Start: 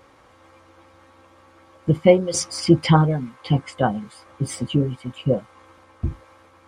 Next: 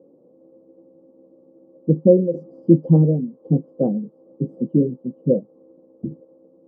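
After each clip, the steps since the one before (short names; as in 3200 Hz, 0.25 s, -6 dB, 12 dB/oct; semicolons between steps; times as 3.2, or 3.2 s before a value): elliptic band-pass 160–520 Hz, stop band 60 dB; in parallel at -1 dB: limiter -14.5 dBFS, peak gain reduction 11 dB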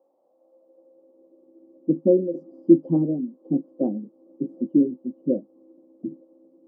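bell 460 Hz -12 dB 0.28 oct; high-pass sweep 770 Hz -> 300 Hz, 0.16–1.76; gain -5.5 dB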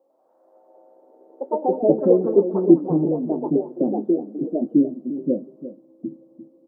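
echo 0.348 s -13 dB; on a send at -21 dB: reverb RT60 0.60 s, pre-delay 4 ms; on the sum: echoes that change speed 96 ms, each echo +3 st, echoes 3; gain +1 dB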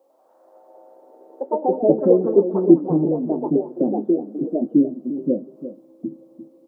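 mismatched tape noise reduction encoder only; gain +1 dB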